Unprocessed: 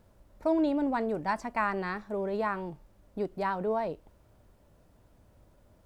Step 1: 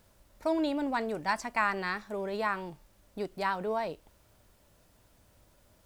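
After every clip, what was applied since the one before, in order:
tilt shelving filter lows −6.5 dB, about 1,500 Hz
level +2.5 dB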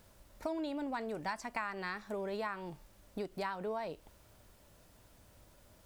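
downward compressor 4 to 1, threshold −38 dBFS, peak gain reduction 13 dB
level +1.5 dB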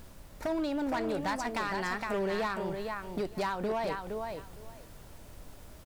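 background noise brown −57 dBFS
on a send: repeating echo 463 ms, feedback 17%, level −6 dB
on the sum: gain into a clipping stage and back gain 34 dB
level +7 dB

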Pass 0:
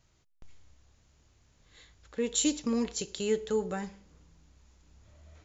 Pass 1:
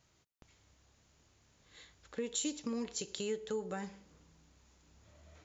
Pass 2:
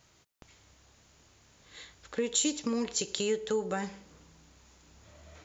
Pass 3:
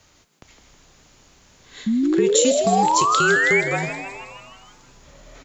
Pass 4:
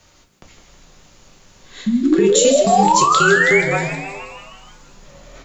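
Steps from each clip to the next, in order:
downward compressor 2.5 to 1, threshold −37 dBFS, peak gain reduction 9.5 dB; high-pass filter 130 Hz 6 dB per octave
low-shelf EQ 330 Hz −3.5 dB; level +8.5 dB
sound drawn into the spectrogram rise, 0:01.86–0:03.61, 250–2,400 Hz −27 dBFS; frequency shifter −39 Hz; echo with shifted repeats 159 ms, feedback 61%, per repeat +120 Hz, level −10 dB; level +8 dB
rectangular room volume 130 cubic metres, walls furnished, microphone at 0.99 metres; level +2 dB

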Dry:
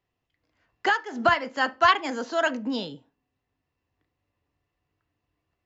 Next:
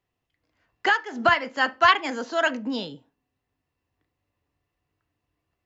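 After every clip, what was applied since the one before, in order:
dynamic equaliser 2,300 Hz, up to +4 dB, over −36 dBFS, Q 1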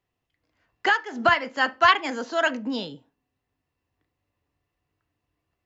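no processing that can be heard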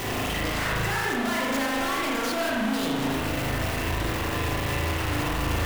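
sign of each sample alone
spring reverb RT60 1.4 s, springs 37 ms, chirp 70 ms, DRR −3.5 dB
level −3.5 dB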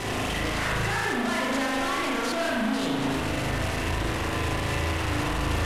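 variable-slope delta modulation 64 kbit/s

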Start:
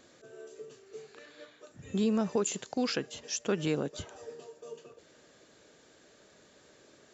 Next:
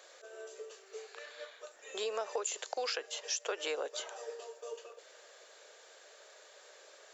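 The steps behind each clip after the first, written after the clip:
Butterworth high-pass 470 Hz 36 dB per octave
downward compressor 6 to 1, threshold −37 dBFS, peak gain reduction 8 dB
level +4.5 dB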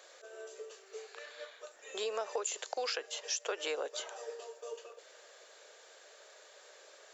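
no processing that can be heard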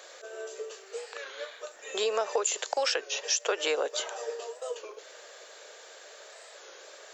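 wow of a warped record 33 1/3 rpm, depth 160 cents
level +8 dB

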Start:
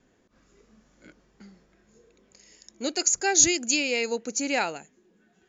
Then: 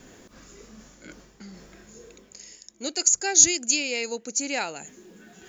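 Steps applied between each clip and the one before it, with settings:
high-shelf EQ 5,600 Hz +11.5 dB
reversed playback
upward compression, threshold −30 dBFS
reversed playback
level −3.5 dB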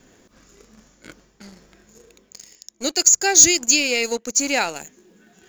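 leveller curve on the samples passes 2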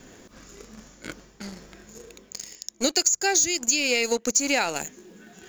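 downward compressor 20 to 1, threshold −23 dBFS, peak gain reduction 17.5 dB
level +5 dB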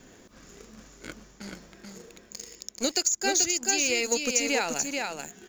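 single-tap delay 433 ms −4 dB
level −4 dB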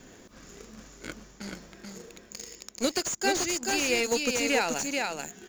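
slew-rate limiting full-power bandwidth 170 Hz
level +1.5 dB

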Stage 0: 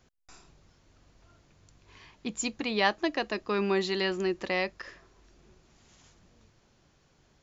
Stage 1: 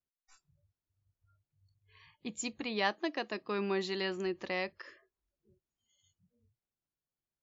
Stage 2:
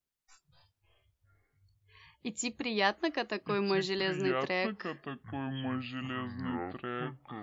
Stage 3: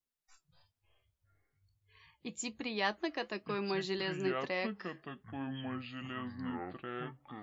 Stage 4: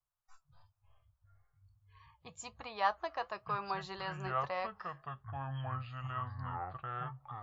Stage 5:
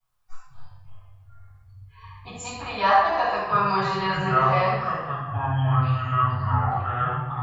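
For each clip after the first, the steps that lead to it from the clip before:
noise reduction from a noise print of the clip's start 28 dB; level −6 dB
delay with pitch and tempo change per echo 97 ms, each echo −7 semitones, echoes 3, each echo −6 dB; level +3 dB
flanger 1.1 Hz, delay 3.4 ms, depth 3 ms, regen +71%
drawn EQ curve 130 Hz 0 dB, 210 Hz −24 dB, 310 Hz −26 dB, 660 Hz −5 dB, 1,200 Hz 0 dB, 2,000 Hz −15 dB; level +8 dB
convolution reverb RT60 1.1 s, pre-delay 4 ms, DRR −12.5 dB

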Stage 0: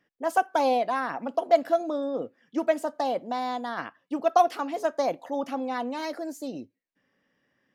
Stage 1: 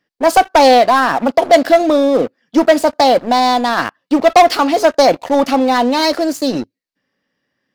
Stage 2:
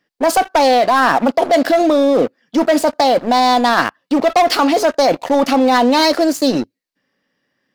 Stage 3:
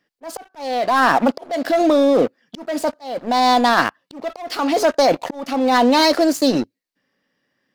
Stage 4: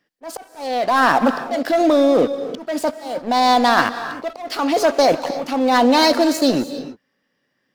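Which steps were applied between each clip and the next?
parametric band 4,500 Hz +9.5 dB 0.57 octaves; leveller curve on the samples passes 3; level +6.5 dB
parametric band 73 Hz −6 dB 1.1 octaves; in parallel at +2 dB: compressor whose output falls as the input rises −14 dBFS, ratio −1; on the sum: level −6.5 dB
volume swells 490 ms; level −1.5 dB
reverb whose tail is shaped and stops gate 340 ms rising, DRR 11.5 dB

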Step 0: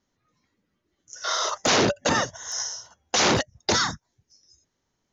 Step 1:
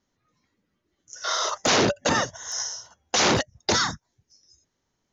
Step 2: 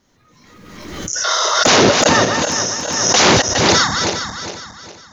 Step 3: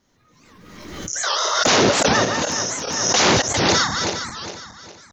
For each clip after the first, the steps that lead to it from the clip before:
no processing that can be heard
feedback delay that plays each chunk backwards 205 ms, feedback 59%, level −5.5 dB; background raised ahead of every attack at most 36 dB per second; level +8.5 dB
wow of a warped record 78 rpm, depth 250 cents; level −4.5 dB

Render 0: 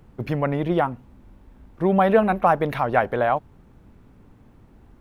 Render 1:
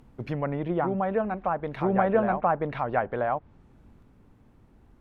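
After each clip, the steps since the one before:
backwards echo 982 ms −3.5 dB
treble cut that deepens with the level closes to 1,900 Hz, closed at −17.5 dBFS
level −6 dB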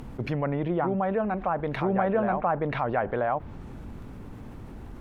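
envelope flattener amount 50%
level −3.5 dB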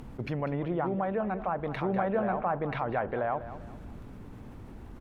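repeating echo 197 ms, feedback 37%, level −13.5 dB
level −4 dB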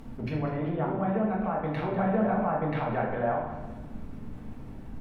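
rectangular room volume 290 cubic metres, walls mixed, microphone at 1.6 metres
level −4 dB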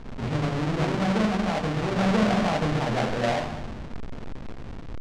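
each half-wave held at its own peak
high-frequency loss of the air 110 metres

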